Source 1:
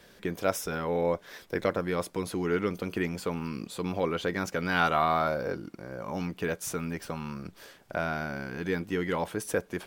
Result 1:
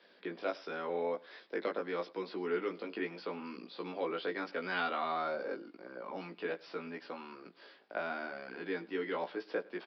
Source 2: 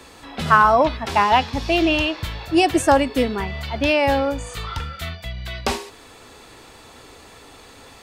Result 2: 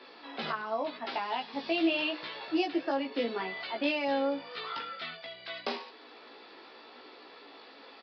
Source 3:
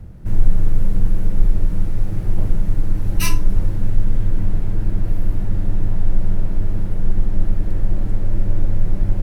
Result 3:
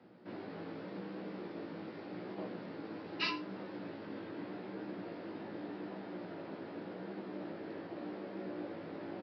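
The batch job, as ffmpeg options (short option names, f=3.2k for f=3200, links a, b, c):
-filter_complex "[0:a]highpass=f=260:w=0.5412,highpass=f=260:w=1.3066,alimiter=limit=-12.5dB:level=0:latency=1:release=472,acrossover=split=360|3000[a][b][c];[b]acompressor=threshold=-25dB:ratio=6[d];[a][d][c]amix=inputs=3:normalize=0,flanger=delay=16:depth=2.3:speed=0.84,aecho=1:1:103:0.0708,aresample=11025,aresample=44100,volume=-3dB"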